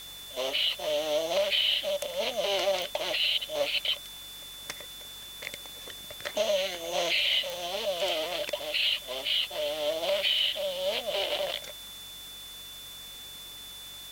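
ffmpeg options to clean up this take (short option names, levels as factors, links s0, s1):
-af "adeclick=t=4,bandreject=f=47.1:t=h:w=4,bandreject=f=94.2:t=h:w=4,bandreject=f=141.3:t=h:w=4,bandreject=f=188.4:t=h:w=4,bandreject=f=235.5:t=h:w=4,bandreject=f=282.6:t=h:w=4,bandreject=f=3500:w=30,afwtdn=0.0045"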